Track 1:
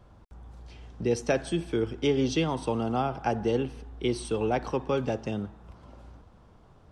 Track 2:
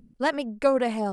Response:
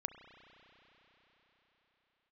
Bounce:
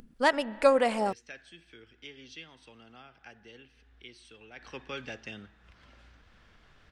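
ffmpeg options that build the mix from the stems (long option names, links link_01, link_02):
-filter_complex "[0:a]firequalizer=gain_entry='entry(240,0);entry(360,-4);entry(940,-7);entry(1700,11);entry(9200,-3)':delay=0.05:min_phase=1,volume=-7dB,afade=type=in:start_time=4.55:duration=0.22:silence=0.223872[link_01];[1:a]volume=-0.5dB,asplit=2[link_02][link_03];[link_03]volume=-6.5dB[link_04];[2:a]atrim=start_sample=2205[link_05];[link_04][link_05]afir=irnorm=-1:irlink=0[link_06];[link_01][link_02][link_06]amix=inputs=3:normalize=0,equalizer=frequency=130:width=0.45:gain=-9.5,acompressor=mode=upward:threshold=-50dB:ratio=2.5"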